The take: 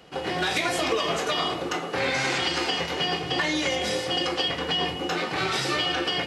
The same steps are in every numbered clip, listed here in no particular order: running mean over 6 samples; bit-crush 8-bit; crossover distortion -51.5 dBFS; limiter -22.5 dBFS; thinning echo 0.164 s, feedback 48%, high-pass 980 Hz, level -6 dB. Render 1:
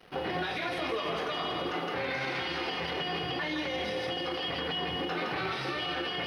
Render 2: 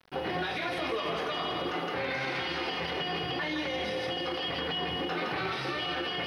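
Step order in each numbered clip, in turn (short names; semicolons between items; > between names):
bit-crush > thinning echo > limiter > crossover distortion > running mean; crossover distortion > bit-crush > thinning echo > limiter > running mean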